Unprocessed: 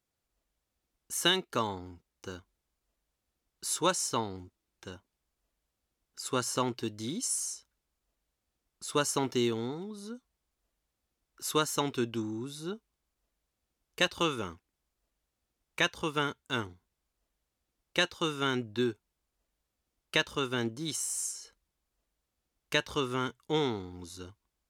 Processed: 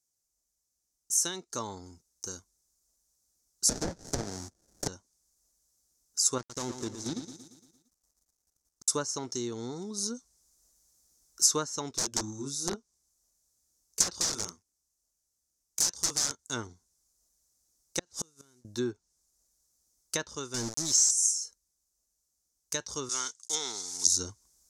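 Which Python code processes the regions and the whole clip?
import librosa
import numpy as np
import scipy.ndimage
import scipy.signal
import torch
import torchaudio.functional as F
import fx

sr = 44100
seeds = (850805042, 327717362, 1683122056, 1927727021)

y = fx.chain(x, sr, fx.env_lowpass_down(base_hz=1400.0, full_db=-24.0),
    fx.sample_hold(seeds[0], rate_hz=1100.0, jitter_pct=20),
    fx.band_squash(depth_pct=100), at=(3.69, 4.88))
y = fx.chain(y, sr, fx.dead_time(dead_ms=0.26),
    fx.level_steps(step_db=12),
    fx.echo_feedback(ms=115, feedback_pct=53, wet_db=-10), at=(6.38, 8.88))
y = fx.chain(y, sr, fx.doubler(ms=29.0, db=-4),
    fx.overflow_wrap(gain_db=26.5),
    fx.upward_expand(threshold_db=-44.0, expansion=1.5), at=(11.91, 16.39))
y = fx.chain(y, sr, fx.delta_mod(bps=64000, step_db=-37.0),
    fx.low_shelf(hz=430.0, db=6.0),
    fx.gate_flip(shuts_db=-22.0, range_db=-36), at=(17.99, 18.65))
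y = fx.chain(y, sr, fx.steep_lowpass(hz=7900.0, slope=48),
    fx.quant_companded(bits=2), at=(20.54, 21.11))
y = fx.chain(y, sr, fx.block_float(bits=5),
    fx.weighting(curve='ITU-R 468'), at=(23.09, 24.07))
y = fx.rider(y, sr, range_db=10, speed_s=0.5)
y = fx.env_lowpass_down(y, sr, base_hz=2400.0, full_db=-24.0)
y = fx.high_shelf_res(y, sr, hz=4200.0, db=14.0, q=3.0)
y = F.gain(torch.from_numpy(y), -4.5).numpy()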